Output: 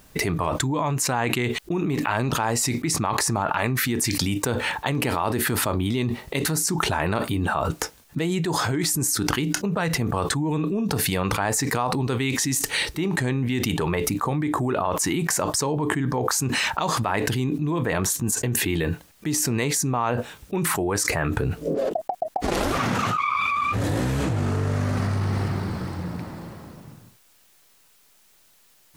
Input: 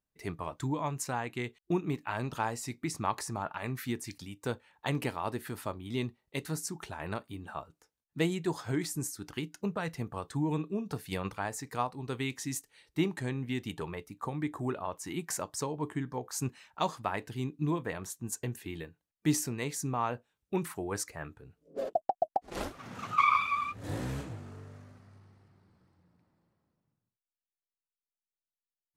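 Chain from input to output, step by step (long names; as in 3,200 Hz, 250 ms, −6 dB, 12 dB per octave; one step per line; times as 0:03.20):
envelope flattener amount 100%
level −2.5 dB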